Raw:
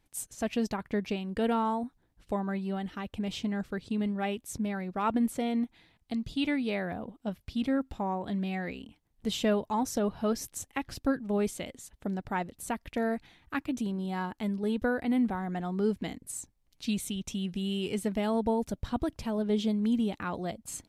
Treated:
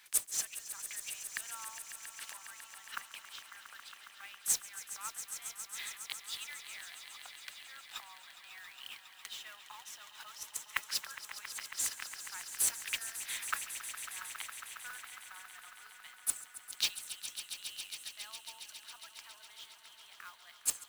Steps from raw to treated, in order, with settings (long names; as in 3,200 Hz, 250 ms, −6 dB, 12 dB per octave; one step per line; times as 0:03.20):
gate with flip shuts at −28 dBFS, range −29 dB
in parallel at −3 dB: compressor whose output falls as the input rises −54 dBFS
on the sum: inverse Chebyshev high-pass filter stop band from 280 Hz, stop band 70 dB
noise that follows the level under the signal 11 dB
echo that builds up and dies away 137 ms, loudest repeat 5, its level −13.5 dB
level +12 dB